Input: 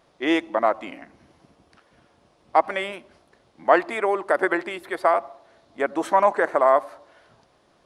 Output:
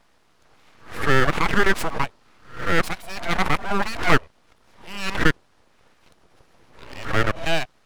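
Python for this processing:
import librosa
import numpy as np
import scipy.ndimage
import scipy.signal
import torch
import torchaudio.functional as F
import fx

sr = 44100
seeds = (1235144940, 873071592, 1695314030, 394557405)

y = np.flip(x).copy()
y = np.abs(y)
y = fx.pre_swell(y, sr, db_per_s=120.0)
y = y * librosa.db_to_amplitude(2.0)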